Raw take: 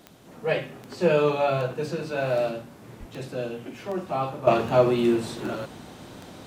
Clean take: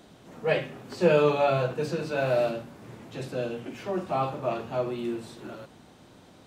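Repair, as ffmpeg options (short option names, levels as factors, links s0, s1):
-filter_complex "[0:a]adeclick=t=4,asplit=3[s0][s1][s2];[s0]afade=t=out:st=2.99:d=0.02[s3];[s1]highpass=f=140:w=0.5412,highpass=f=140:w=1.3066,afade=t=in:st=2.99:d=0.02,afade=t=out:st=3.11:d=0.02[s4];[s2]afade=t=in:st=3.11:d=0.02[s5];[s3][s4][s5]amix=inputs=3:normalize=0,agate=range=0.0891:threshold=0.0126,asetnsamples=n=441:p=0,asendcmd='4.47 volume volume -10dB',volume=1"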